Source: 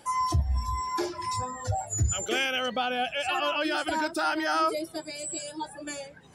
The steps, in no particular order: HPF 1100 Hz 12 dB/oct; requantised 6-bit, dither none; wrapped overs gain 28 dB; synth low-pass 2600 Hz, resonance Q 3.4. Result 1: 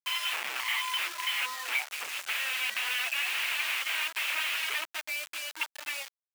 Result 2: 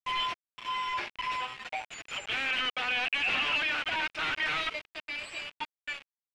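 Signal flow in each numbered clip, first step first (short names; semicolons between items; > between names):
wrapped overs > synth low-pass > requantised > HPF; HPF > requantised > wrapped overs > synth low-pass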